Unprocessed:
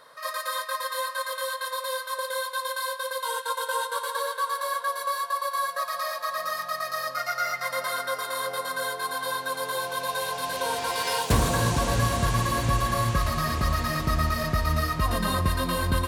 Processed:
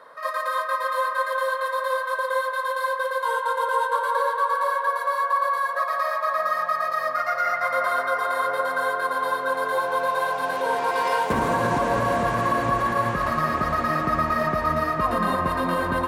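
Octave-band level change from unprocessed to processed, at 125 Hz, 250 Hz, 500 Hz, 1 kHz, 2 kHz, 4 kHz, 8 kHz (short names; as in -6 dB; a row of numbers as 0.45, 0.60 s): -6.0, +2.5, +6.0, +6.0, +4.5, -6.5, -9.5 dB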